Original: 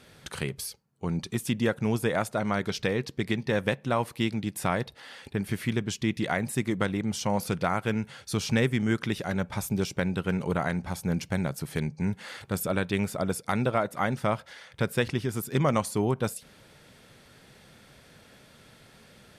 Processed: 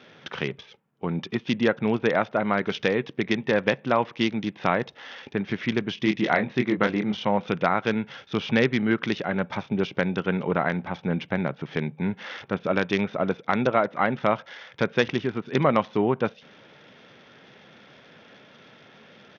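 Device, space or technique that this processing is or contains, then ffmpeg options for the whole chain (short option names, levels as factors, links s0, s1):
Bluetooth headset: -filter_complex "[0:a]asplit=3[s0][s1][s2];[s0]afade=t=out:st=5.96:d=0.02[s3];[s1]asplit=2[s4][s5];[s5]adelay=24,volume=0.531[s6];[s4][s6]amix=inputs=2:normalize=0,afade=t=in:st=5.96:d=0.02,afade=t=out:st=7.21:d=0.02[s7];[s2]afade=t=in:st=7.21:d=0.02[s8];[s3][s7][s8]amix=inputs=3:normalize=0,highpass=190,aresample=8000,aresample=44100,volume=1.78" -ar 48000 -c:a sbc -b:a 64k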